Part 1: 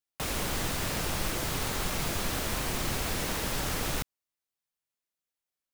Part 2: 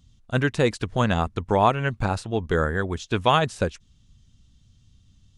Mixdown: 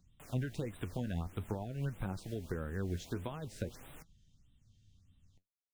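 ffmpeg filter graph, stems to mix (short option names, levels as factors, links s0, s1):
-filter_complex "[0:a]volume=0.133[s0];[1:a]acompressor=threshold=0.0891:ratio=6,volume=0.531[s1];[s0][s1]amix=inputs=2:normalize=0,acrossover=split=370[s2][s3];[s3]acompressor=threshold=0.0112:ratio=10[s4];[s2][s4]amix=inputs=2:normalize=0,flanger=delay=5.3:depth=7:regen=62:speed=0.48:shape=triangular,afftfilt=real='re*(1-between(b*sr/1024,950*pow(5700/950,0.5+0.5*sin(2*PI*1.6*pts/sr))/1.41,950*pow(5700/950,0.5+0.5*sin(2*PI*1.6*pts/sr))*1.41))':imag='im*(1-between(b*sr/1024,950*pow(5700/950,0.5+0.5*sin(2*PI*1.6*pts/sr))/1.41,950*pow(5700/950,0.5+0.5*sin(2*PI*1.6*pts/sr))*1.41))':win_size=1024:overlap=0.75"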